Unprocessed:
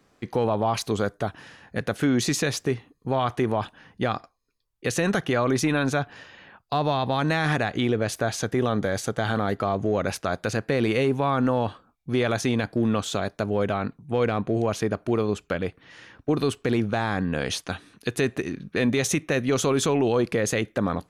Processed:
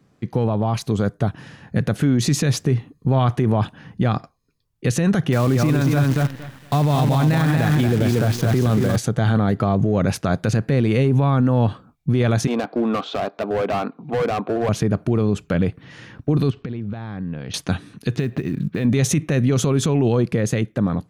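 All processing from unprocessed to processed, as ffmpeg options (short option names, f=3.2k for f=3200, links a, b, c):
-filter_complex "[0:a]asettb=1/sr,asplit=3[a][b][c];[a]atrim=end=5.324[d];[b]atrim=start=5.32:end=8.96,asetpts=PTS-STARTPTS,afade=t=in:d=0.004:c=qsin,afade=t=out:st=3.636:d=0.004:c=qsin,lowpass=5.1k,aecho=1:1:232|464|696:0.631|0.145|0.0334,atrim=end_sample=160524,acrusher=bits=6:dc=4:mix=0:aa=0.000001[e];[c]atrim=start=8.956[f];[d][e]acrossfade=d=0.004:c1=hsin:c2=qsin[g];[g][f]acrossfade=d=0.004:c1=qsin:c2=hsin,asettb=1/sr,asplit=3[h][i][j];[h]atrim=end=12.474[k];[i]atrim=start=12.47:end=14.69,asetpts=PTS-STARTPTS,afade=t=in:d=0.004:c=qsin,afade=t=out:st=2.216:d=0.004:c=qsin,highpass=f=300:w=0.5412,highpass=f=300:w=1.3066,equalizer=f=350:t=q:w=4:g=-4,equalizer=f=740:t=q:w=4:g=6,equalizer=f=1.2k:t=q:w=4:g=5,equalizer=f=1.8k:t=q:w=4:g=-7,equalizer=f=3.2k:t=q:w=4:g=-3,lowpass=f=3.8k:w=0.5412,lowpass=f=3.8k:w=1.3066,volume=24.5dB,asoftclip=hard,volume=-24.5dB,acompressor=mode=upward:threshold=-36dB:ratio=2.5:attack=3.2:release=140:knee=2.83:detection=peak[l];[j]atrim=start=14.686[m];[k][l]acrossfade=d=0.004:c1=hsin:c2=qsin[n];[n][m]acrossfade=d=0.004:c1=qsin:c2=hsin,asettb=1/sr,asplit=3[o][p][q];[o]atrim=end=16.504[r];[p]atrim=start=16.5:end=17.54,asetpts=PTS-STARTPTS,afade=t=in:d=0.004:c=qsin,afade=t=out:st=1.036:d=0.004:c=qsin,lowpass=f=4.6k:w=0.5412,lowpass=f=4.6k:w=1.3066,acompressor=threshold=-37dB:ratio=12:attack=3.2:release=140:knee=1:detection=peak[s];[q]atrim=start=17.536[t];[r][s]acrossfade=d=0.004:c1=hsin:c2=qsin[u];[u][t]acrossfade=d=0.004:c1=qsin:c2=hsin,asettb=1/sr,asplit=3[v][w][x];[v]atrim=end=18.164[y];[w]atrim=start=18.16:end=18.85,asetpts=PTS-STARTPTS,afade=t=in:d=0.004:c=qsin,afade=t=out:st=0.686:d=0.004:c=qsin,lowpass=f=5.1k:w=0.5412,lowpass=f=5.1k:w=1.3066,acompressor=threshold=-31dB:ratio=4:attack=3.2:release=140:knee=1:detection=peak,acrusher=bits=7:mode=log:mix=0:aa=0.000001[z];[x]atrim=start=18.846[aa];[y][z]acrossfade=d=0.004:c1=hsin:c2=qsin[ab];[ab][aa]acrossfade=d=0.004:c1=qsin:c2=hsin,dynaudnorm=f=130:g=21:m=7dB,equalizer=f=140:t=o:w=1.9:g=14,alimiter=level_in=6dB:limit=-1dB:release=50:level=0:latency=1,volume=-9dB"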